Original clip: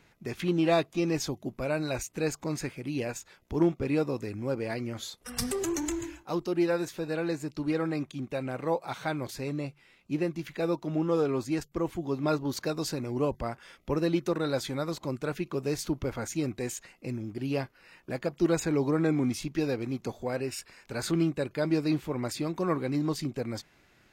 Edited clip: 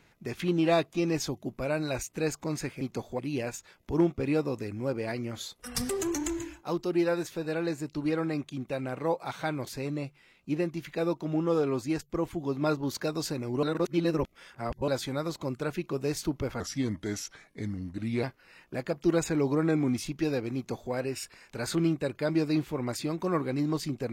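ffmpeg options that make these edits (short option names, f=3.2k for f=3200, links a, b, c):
-filter_complex "[0:a]asplit=7[a][b][c][d][e][f][g];[a]atrim=end=2.812[h];[b]atrim=start=19.908:end=20.292[i];[c]atrim=start=2.808:end=13.252[j];[d]atrim=start=13.248:end=14.502,asetpts=PTS-STARTPTS,areverse[k];[e]atrim=start=14.498:end=16.224[l];[f]atrim=start=16.22:end=17.59,asetpts=PTS-STARTPTS,asetrate=37044,aresample=44100[m];[g]atrim=start=17.586[n];[h][i]acrossfade=d=0.004:c1=hsin:c2=hsin[o];[o][j]acrossfade=d=0.004:c1=hsin:c2=hsin[p];[p][k]acrossfade=d=0.004:c1=hsin:c2=hsin[q];[q][l]acrossfade=d=0.004:c1=hsin:c2=hsin[r];[r][m]acrossfade=d=0.004:c1=hsin:c2=hsin[s];[s][n]acrossfade=d=0.004:c1=hsin:c2=hsin"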